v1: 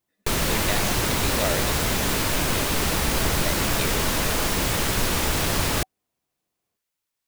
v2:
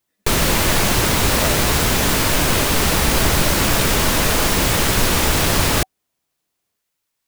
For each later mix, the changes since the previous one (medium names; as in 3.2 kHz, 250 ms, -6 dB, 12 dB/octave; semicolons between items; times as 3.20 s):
background +6.5 dB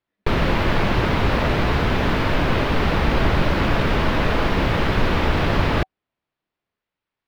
speech -4.0 dB; master: add distance through air 350 m